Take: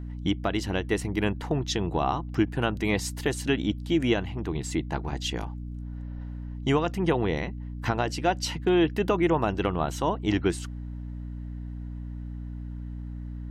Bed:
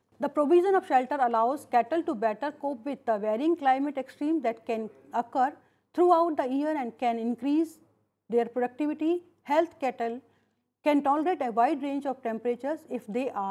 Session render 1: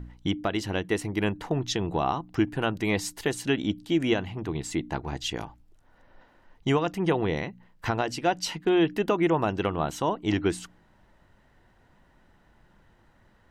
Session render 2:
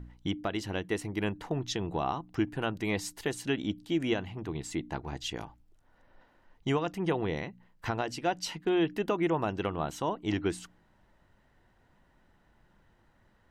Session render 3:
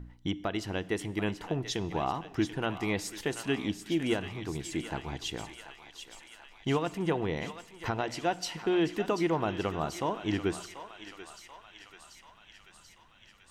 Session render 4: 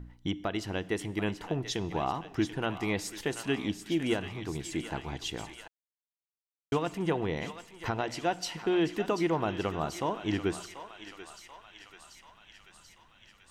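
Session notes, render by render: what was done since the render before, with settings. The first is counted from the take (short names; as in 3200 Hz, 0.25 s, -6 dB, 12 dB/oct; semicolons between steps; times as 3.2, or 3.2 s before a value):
de-hum 60 Hz, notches 5
gain -5 dB
thinning echo 0.736 s, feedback 74%, high-pass 1000 Hz, level -9 dB; Schroeder reverb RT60 1.3 s, combs from 25 ms, DRR 18.5 dB
5.68–6.72 mute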